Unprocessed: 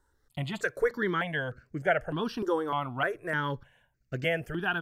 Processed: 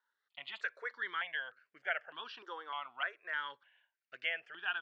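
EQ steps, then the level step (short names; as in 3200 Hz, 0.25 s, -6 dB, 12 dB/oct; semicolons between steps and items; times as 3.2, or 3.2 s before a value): HPF 1200 Hz 12 dB/oct; ladder low-pass 4200 Hz, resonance 30%; +1.0 dB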